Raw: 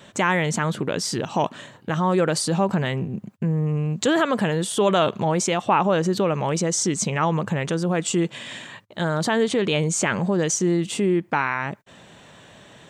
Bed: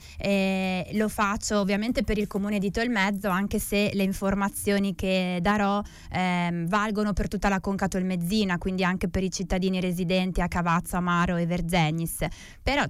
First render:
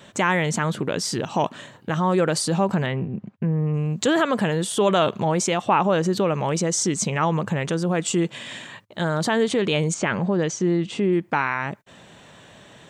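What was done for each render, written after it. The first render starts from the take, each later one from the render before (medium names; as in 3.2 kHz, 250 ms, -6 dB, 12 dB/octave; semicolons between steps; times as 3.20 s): 2.86–3.74 s: low-pass 3.1 kHz; 9.94–11.13 s: distance through air 120 m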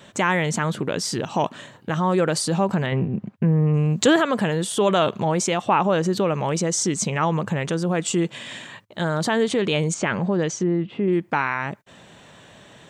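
2.92–4.16 s: gain +4 dB; 10.63–11.08 s: distance through air 470 m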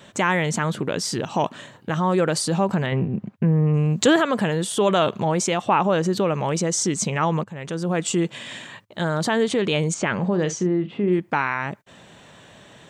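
7.44–7.95 s: fade in, from -20 dB; 10.17–11.19 s: doubling 44 ms -12 dB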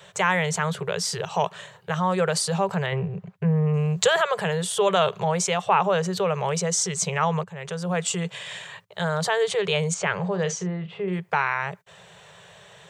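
elliptic band-stop 180–400 Hz; bass shelf 110 Hz -7 dB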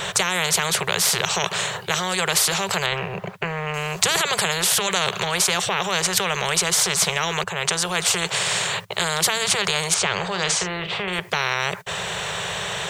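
loudness maximiser +11.5 dB; spectrum-flattening compressor 4:1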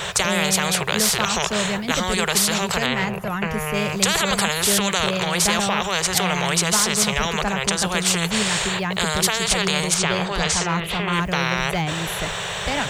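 add bed -1 dB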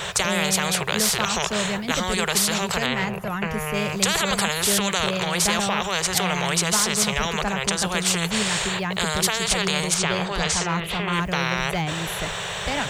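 trim -2 dB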